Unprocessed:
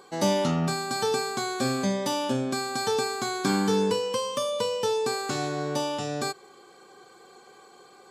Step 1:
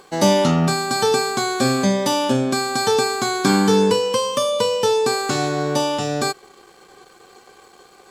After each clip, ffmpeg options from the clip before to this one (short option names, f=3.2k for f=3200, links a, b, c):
-af "aeval=exprs='sgn(val(0))*max(abs(val(0))-0.00141,0)':c=same,volume=8.5dB"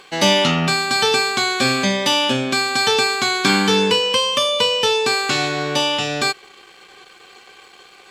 -af "equalizer=f=2.7k:t=o:w=1.6:g=15,volume=-3dB"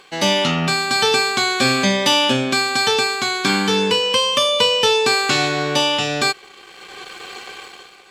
-af "dynaudnorm=f=120:g=9:m=13dB,volume=-2.5dB"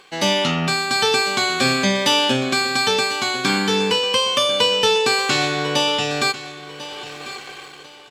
-af "aecho=1:1:1045|2090|3135:0.178|0.0462|0.012,volume=-1.5dB"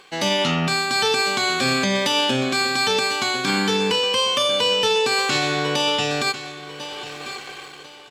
-af "alimiter=limit=-11dB:level=0:latency=1:release=41"